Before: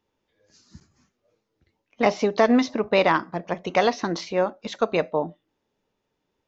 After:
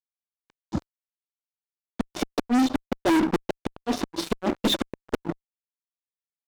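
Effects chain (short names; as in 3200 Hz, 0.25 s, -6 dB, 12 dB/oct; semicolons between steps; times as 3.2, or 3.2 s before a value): bell 2000 Hz -11 dB 0.35 oct; small resonant body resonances 310/3600 Hz, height 17 dB, ringing for 35 ms; soft clip -4.5 dBFS, distortion -20 dB; HPF 62 Hz 24 dB/oct; compressor 10:1, threshold -22 dBFS, peak gain reduction 14.5 dB; high shelf 2700 Hz -9 dB; flipped gate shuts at -16 dBFS, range -42 dB; fuzz box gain 37 dB, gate -45 dBFS; gain -4.5 dB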